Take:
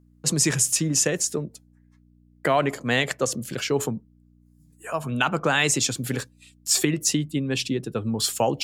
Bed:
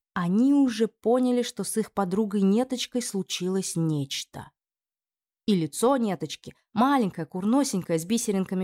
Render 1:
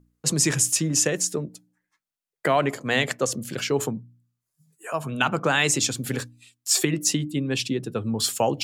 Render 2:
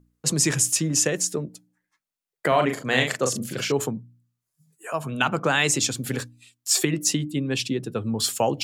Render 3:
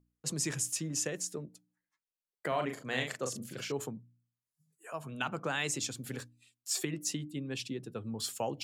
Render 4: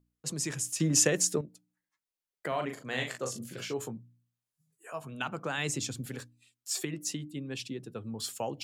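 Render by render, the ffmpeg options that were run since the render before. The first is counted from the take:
-af "bandreject=f=60:t=h:w=4,bandreject=f=120:t=h:w=4,bandreject=f=180:t=h:w=4,bandreject=f=240:t=h:w=4,bandreject=f=300:t=h:w=4"
-filter_complex "[0:a]asettb=1/sr,asplit=3[a][b][c];[a]atrim=end=2.484[d];[b]atrim=start=2.48:end=3.72,asetpts=PTS-STARTPTS,afade=t=in:d=0.004:c=qsin,afade=t=out:st=1.236:d=0.004:c=qsin,asplit=2[e][f];[f]adelay=39,volume=-5dB[g];[e][g]amix=inputs=2:normalize=0,atrim=end_sample=54684[h];[c]atrim=start=3.716[i];[d][h]acrossfade=d=0.004:c1=hsin:c2=qsin[j];[j][i]acrossfade=d=0.004:c1=qsin:c2=hsin"
-af "volume=-12.5dB"
-filter_complex "[0:a]asettb=1/sr,asplit=3[a][b][c];[a]atrim=end=2.974[d];[b]atrim=start=2.97:end=5.05,asetpts=PTS-STARTPTS,afade=t=in:d=0.004:c=qsin,afade=t=out:st=2.076:d=0.004:c=qsin,asplit=2[e][f];[f]adelay=17,volume=-7dB[g];[e][g]amix=inputs=2:normalize=0,atrim=end_sample=91728[h];[c]atrim=start=5.046[i];[d][h]acrossfade=d=0.004:c1=hsin:c2=qsin[j];[j][i]acrossfade=d=0.004:c1=qsin:c2=hsin,asettb=1/sr,asplit=3[k][l][m];[k]atrim=end=5.584[n];[l]atrim=start=5.58:end=6.06,asetpts=PTS-STARTPTS,afade=t=in:d=0.004:c=qsin,afade=t=out:st=0.476:d=0.004:c=qsin,lowshelf=f=260:g=8[o];[m]atrim=start=6.056[p];[n][o]acrossfade=d=0.004:c1=hsin:c2=qsin[q];[q][p]acrossfade=d=0.004:c1=qsin:c2=hsin,asplit=3[r][s][t];[r]atrim=end=0.802[u];[s]atrim=start=0.798:end=1.412,asetpts=PTS-STARTPTS,volume=10dB[v];[t]atrim=start=1.408[w];[u][v]acrossfade=d=0.004:c1=hsin:c2=hsin[x];[x][w]acrossfade=d=0.004:c1=hsin:c2=hsin"

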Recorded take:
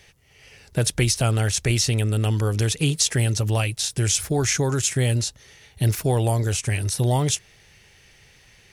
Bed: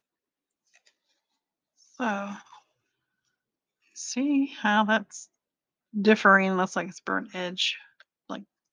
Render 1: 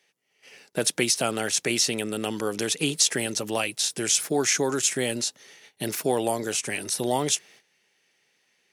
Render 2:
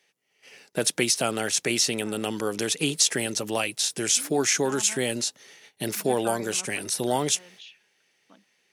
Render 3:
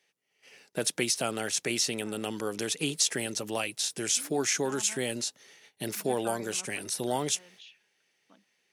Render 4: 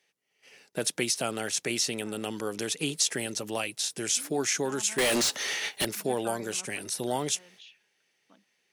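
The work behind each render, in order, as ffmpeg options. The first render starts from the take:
-af "highpass=f=210:w=0.5412,highpass=f=210:w=1.3066,agate=range=-14dB:threshold=-50dB:ratio=16:detection=peak"
-filter_complex "[1:a]volume=-20dB[a];[0:a][a]amix=inputs=2:normalize=0"
-af "volume=-5dB"
-filter_complex "[0:a]asettb=1/sr,asplit=3[a][b][c];[a]atrim=end=4.984[d];[b]atrim=start=4.98:end=5.85,asetpts=PTS-STARTPTS,afade=t=in:d=0.004:c=qsin,afade=t=out:st=0.866:d=0.004:c=qsin,asplit=2[e][f];[f]highpass=f=720:p=1,volume=33dB,asoftclip=type=tanh:threshold=-17.5dB[g];[e][g]amix=inputs=2:normalize=0,lowpass=f=6.7k:p=1,volume=-6dB[h];[c]atrim=start=5.846[i];[d][h]acrossfade=d=0.004:c1=hsin:c2=qsin[j];[j][i]acrossfade=d=0.004:c1=qsin:c2=hsin"

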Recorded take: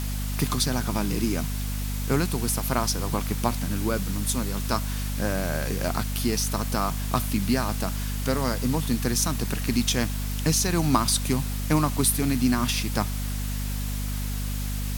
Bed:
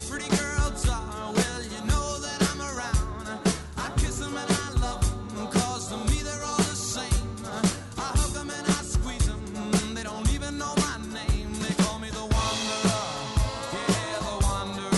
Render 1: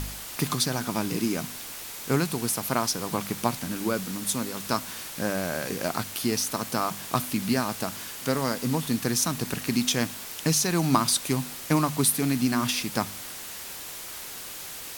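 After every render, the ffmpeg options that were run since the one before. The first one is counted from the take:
-af "bandreject=f=50:t=h:w=4,bandreject=f=100:t=h:w=4,bandreject=f=150:t=h:w=4,bandreject=f=200:t=h:w=4,bandreject=f=250:t=h:w=4"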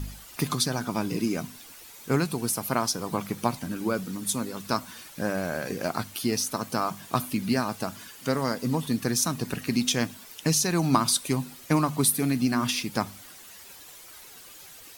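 -af "afftdn=nr=11:nf=-39"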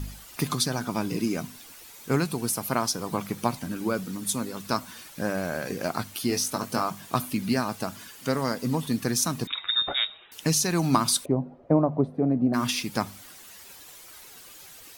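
-filter_complex "[0:a]asettb=1/sr,asplit=3[a][b][c];[a]atrim=end=6.284[d];[b]atrim=start=6.28:end=6.82,asetpts=PTS-STARTPTS,afade=t=in:d=0.004:c=qsin,afade=t=out:st=0.536:d=0.004:c=qsin,asplit=2[e][f];[f]adelay=21,volume=-6dB[g];[e][g]amix=inputs=2:normalize=0,atrim=end_sample=23814[h];[c]atrim=start=6.816[i];[d][h]acrossfade=d=0.004:c1=hsin:c2=qsin[j];[j][i]acrossfade=d=0.004:c1=qsin:c2=hsin,asettb=1/sr,asplit=3[k][l][m];[k]atrim=end=9.474[n];[l]atrim=start=9.47:end=10.32,asetpts=PTS-STARTPTS,afade=t=in:d=0.004:c=qsin,afade=t=out:st=0.846:d=0.004:c=qsin,lowpass=f=3.3k:t=q:w=0.5098,lowpass=f=3.3k:t=q:w=0.6013,lowpass=f=3.3k:t=q:w=0.9,lowpass=f=3.3k:t=q:w=2.563,afreqshift=-3900[o];[m]atrim=start=10.316[p];[n][o]acrossfade=d=0.004:c1=hsin:c2=qsin[q];[q][p]acrossfade=d=0.004:c1=qsin:c2=hsin,asplit=3[r][s][t];[r]afade=t=out:st=11.24:d=0.02[u];[s]lowpass=f=610:t=q:w=2.9,afade=t=in:st=11.24:d=0.02,afade=t=out:st=12.53:d=0.02[v];[t]afade=t=in:st=12.53:d=0.02[w];[u][v][w]amix=inputs=3:normalize=0"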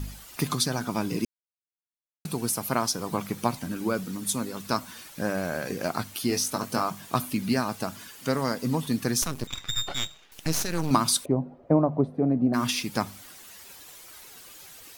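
-filter_complex "[0:a]asettb=1/sr,asplit=3[a][b][c];[a]atrim=end=9.224[d];[b]atrim=start=9.22:end=10.91,asetpts=PTS-STARTPTS,afade=t=in:d=0.004:c=qsin,afade=t=out:st=1.686:d=0.004:c=qsin,aeval=exprs='max(val(0),0)':c=same[e];[c]atrim=start=10.906[f];[d][e]acrossfade=d=0.004:c1=hsin:c2=qsin[g];[g][f]acrossfade=d=0.004:c1=qsin:c2=hsin,asplit=3[h][i][j];[h]atrim=end=1.25,asetpts=PTS-STARTPTS,afade=t=out:st=1.246:d=0.004:c=hsin[k];[i]atrim=start=1.25:end=2.25,asetpts=PTS-STARTPTS,volume=0[l];[j]atrim=start=2.25,asetpts=PTS-STARTPTS,afade=t=in:d=0.004:c=hsin[m];[k][l][m]concat=n=3:v=0:a=1"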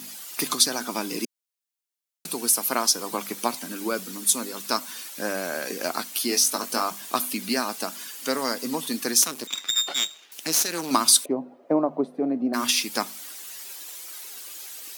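-af "highpass=f=240:w=0.5412,highpass=f=240:w=1.3066,highshelf=f=2.6k:g=9"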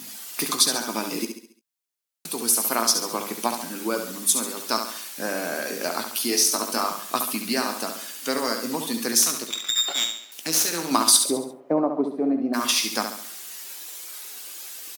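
-filter_complex "[0:a]asplit=2[a][b];[b]adelay=18,volume=-12dB[c];[a][c]amix=inputs=2:normalize=0,aecho=1:1:69|138|207|276|345:0.447|0.197|0.0865|0.0381|0.0167"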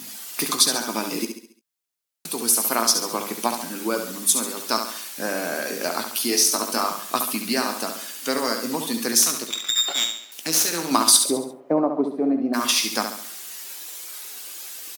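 -af "volume=1.5dB"

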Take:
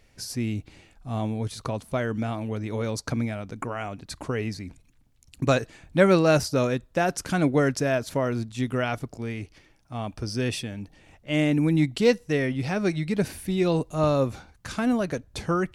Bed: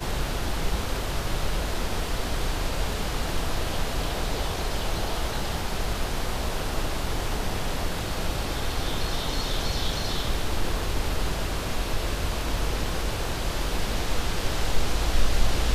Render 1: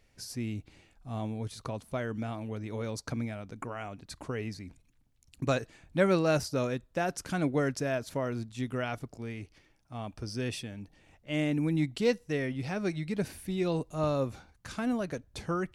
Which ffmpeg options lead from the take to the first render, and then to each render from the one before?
-af "volume=-7dB"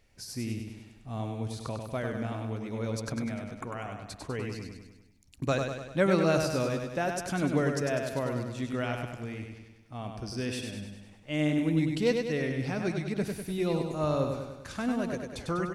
-af "aecho=1:1:99|198|297|396|495|594|693:0.562|0.309|0.17|0.0936|0.0515|0.0283|0.0156"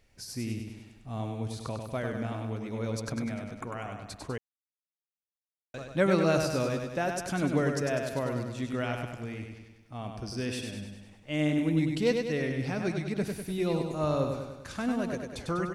-filter_complex "[0:a]asplit=3[a][b][c];[a]atrim=end=4.38,asetpts=PTS-STARTPTS,afade=t=out:st=4.376:d=0.004:c=hsin[d];[b]atrim=start=4.38:end=5.74,asetpts=PTS-STARTPTS,volume=0[e];[c]atrim=start=5.74,asetpts=PTS-STARTPTS,afade=t=in:d=0.004:c=hsin[f];[d][e][f]concat=n=3:v=0:a=1"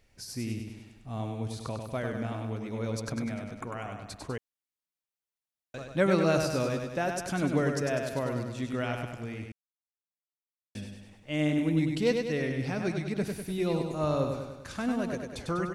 -filter_complex "[0:a]asplit=3[a][b][c];[a]atrim=end=9.52,asetpts=PTS-STARTPTS,afade=t=out:st=9.516:d=0.004:c=hsin[d];[b]atrim=start=9.52:end=10.75,asetpts=PTS-STARTPTS,volume=0[e];[c]atrim=start=10.75,asetpts=PTS-STARTPTS,afade=t=in:d=0.004:c=hsin[f];[d][e][f]concat=n=3:v=0:a=1"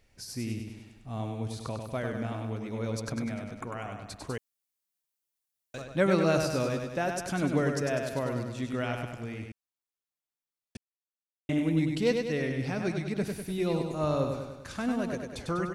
-filter_complex "[0:a]asettb=1/sr,asplit=3[a][b][c];[a]atrim=end=4.274[d];[b]atrim=start=4.27:end=5.82,asetpts=PTS-STARTPTS,afade=t=in:d=0.004:c=qsin,afade=t=out:st=1.546:d=0.004:c=qsin,highshelf=f=5.2k:g=9.5[e];[c]atrim=start=5.816[f];[d][e]acrossfade=d=0.004:c1=hsin:c2=qsin[g];[g][f]acrossfade=d=0.004:c1=qsin:c2=hsin,asplit=3[h][i][j];[h]atrim=end=10.77,asetpts=PTS-STARTPTS,afade=t=out:st=10.766:d=0.004:c=hsin[k];[i]atrim=start=10.77:end=11.49,asetpts=PTS-STARTPTS,volume=0[l];[j]atrim=start=11.49,asetpts=PTS-STARTPTS,afade=t=in:d=0.004:c=hsin[m];[k][l][m]concat=n=3:v=0:a=1"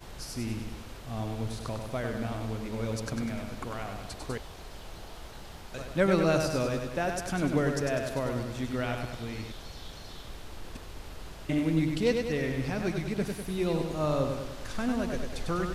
-filter_complex "[1:a]volume=-16.5dB[a];[0:a][a]amix=inputs=2:normalize=0"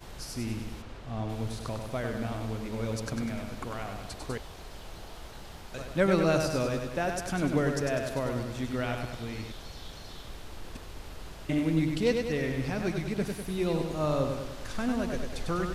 -filter_complex "[0:a]asplit=3[a][b][c];[a]afade=t=out:st=0.81:d=0.02[d];[b]aemphasis=mode=reproduction:type=50fm,afade=t=in:st=0.81:d=0.02,afade=t=out:st=1.28:d=0.02[e];[c]afade=t=in:st=1.28:d=0.02[f];[d][e][f]amix=inputs=3:normalize=0"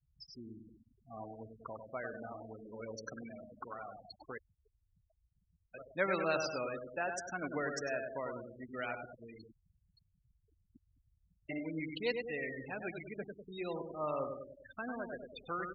-af "afftfilt=real='re*gte(hypot(re,im),0.0282)':imag='im*gte(hypot(re,im),0.0282)':win_size=1024:overlap=0.75,highpass=f=1.3k:p=1"

